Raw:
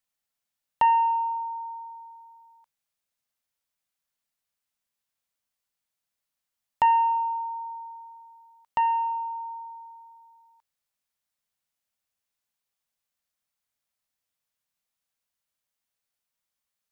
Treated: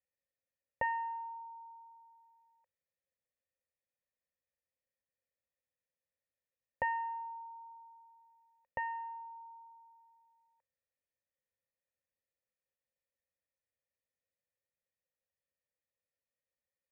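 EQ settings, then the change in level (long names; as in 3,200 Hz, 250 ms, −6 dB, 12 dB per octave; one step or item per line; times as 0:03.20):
formant resonators in series e
parametric band 76 Hz +14 dB 2.7 octaves
+5.0 dB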